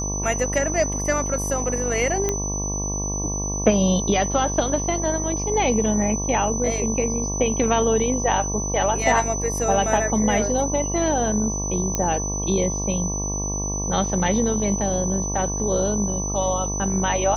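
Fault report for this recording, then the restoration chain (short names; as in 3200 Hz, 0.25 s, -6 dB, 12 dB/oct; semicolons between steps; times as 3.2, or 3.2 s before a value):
buzz 50 Hz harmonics 23 -28 dBFS
tone 6000 Hz -27 dBFS
2.29 pop -9 dBFS
11.95 pop -8 dBFS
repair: de-click; de-hum 50 Hz, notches 23; notch 6000 Hz, Q 30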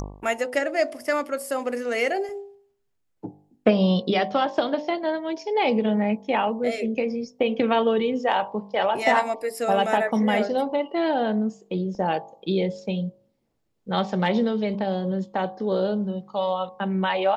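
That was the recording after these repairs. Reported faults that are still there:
none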